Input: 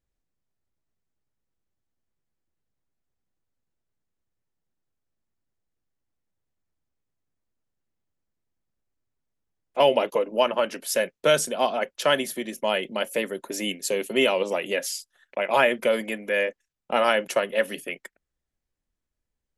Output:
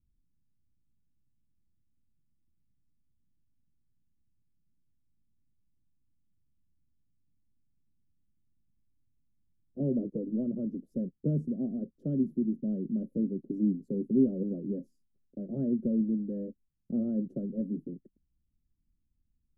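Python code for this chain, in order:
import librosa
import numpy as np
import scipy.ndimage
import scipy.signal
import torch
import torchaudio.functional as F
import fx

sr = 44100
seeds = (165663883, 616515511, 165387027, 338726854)

y = scipy.signal.sosfilt(scipy.signal.cheby2(4, 60, 890.0, 'lowpass', fs=sr, output='sos'), x)
y = y * 10.0 ** (8.5 / 20.0)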